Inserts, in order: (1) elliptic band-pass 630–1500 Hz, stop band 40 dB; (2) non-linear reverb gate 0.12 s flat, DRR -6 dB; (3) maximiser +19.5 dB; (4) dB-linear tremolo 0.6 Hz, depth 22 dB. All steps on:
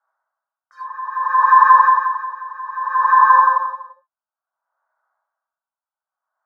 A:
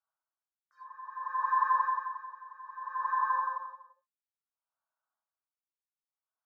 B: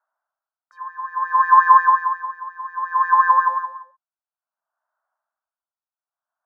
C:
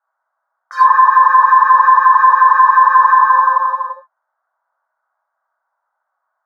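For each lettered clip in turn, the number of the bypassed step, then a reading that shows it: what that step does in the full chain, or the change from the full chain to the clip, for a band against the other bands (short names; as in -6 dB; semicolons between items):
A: 3, crest factor change +2.0 dB; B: 2, crest factor change +2.5 dB; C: 4, momentary loudness spread change -10 LU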